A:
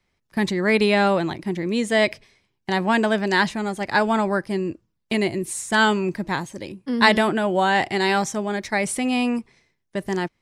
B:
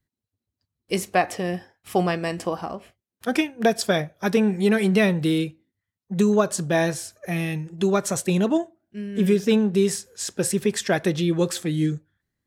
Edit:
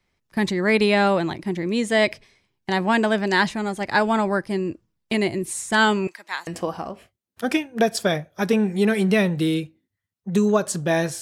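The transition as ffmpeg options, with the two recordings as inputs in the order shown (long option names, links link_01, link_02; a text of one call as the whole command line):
ffmpeg -i cue0.wav -i cue1.wav -filter_complex "[0:a]asettb=1/sr,asplit=3[link_01][link_02][link_03];[link_01]atrim=end=6.074[link_04];[link_02]atrim=start=6.07:end=6.47,asetpts=PTS-STARTPTS,afade=type=in:duration=0.004:curve=qsin,afade=type=out:start_time=0.396:duration=0.004:curve=qsin,highpass=1200[link_05];[link_03]atrim=start=6.466[link_06];[link_04][link_05]acrossfade=duration=0.004:curve1=hsin:curve2=qsin[link_07];[link_07][link_06]acrossfade=duration=0.004:curve1=qsin:curve2=hsin,apad=whole_dur=11.21,atrim=end=11.21,atrim=end=6.472[link_08];[1:a]atrim=start=2.308:end=7.05[link_09];[link_08][link_09]acrossfade=duration=0.004:curve1=hsin:curve2=hsin" out.wav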